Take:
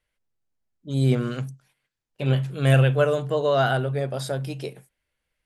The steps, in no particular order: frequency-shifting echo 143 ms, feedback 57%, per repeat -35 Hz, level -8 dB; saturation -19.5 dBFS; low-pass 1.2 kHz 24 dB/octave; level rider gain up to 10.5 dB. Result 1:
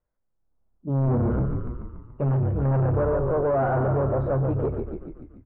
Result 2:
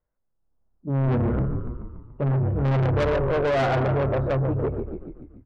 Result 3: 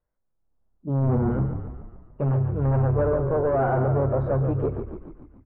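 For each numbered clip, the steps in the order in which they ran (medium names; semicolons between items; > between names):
level rider > frequency-shifting echo > saturation > low-pass; low-pass > level rider > frequency-shifting echo > saturation; level rider > saturation > frequency-shifting echo > low-pass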